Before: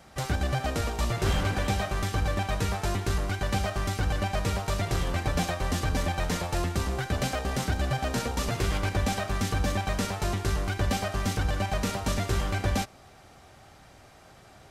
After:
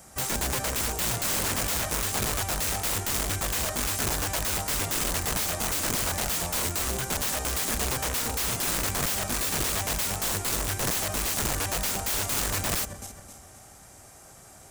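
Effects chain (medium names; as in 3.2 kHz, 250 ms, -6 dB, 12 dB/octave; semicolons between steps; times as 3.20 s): backward echo that repeats 132 ms, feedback 63%, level -13.5 dB; resonant high shelf 5.5 kHz +12.5 dB, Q 1.5; integer overflow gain 22.5 dB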